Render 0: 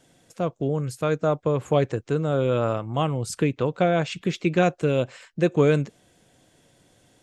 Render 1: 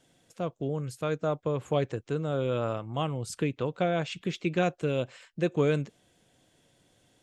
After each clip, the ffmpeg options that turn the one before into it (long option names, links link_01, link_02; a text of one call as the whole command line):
ffmpeg -i in.wav -af "equalizer=frequency=3200:width=2:gain=3,volume=-6.5dB" out.wav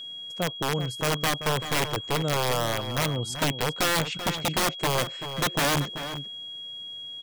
ffmpeg -i in.wav -filter_complex "[0:a]aeval=exprs='(mod(14.1*val(0)+1,2)-1)/14.1':channel_layout=same,asplit=2[link_01][link_02];[link_02]adelay=384.8,volume=-10dB,highshelf=frequency=4000:gain=-8.66[link_03];[link_01][link_03]amix=inputs=2:normalize=0,aeval=exprs='val(0)+0.01*sin(2*PI*3300*n/s)':channel_layout=same,volume=4dB" out.wav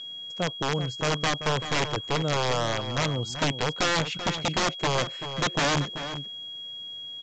ffmpeg -i in.wav -ar 16000 -c:a pcm_mulaw out.wav